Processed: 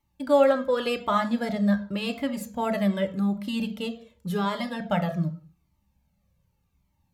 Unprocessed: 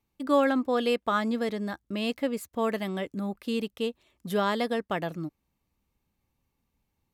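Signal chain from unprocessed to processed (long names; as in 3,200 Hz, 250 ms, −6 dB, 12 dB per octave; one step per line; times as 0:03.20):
0:04.30–0:04.80: tuned comb filter 82 Hz, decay 0.2 s, harmonics all, mix 50%
on a send at −5 dB: convolution reverb RT60 0.45 s, pre-delay 3 ms
on the sum: flanger whose copies keep moving one way falling 0.87 Hz
level +5.5 dB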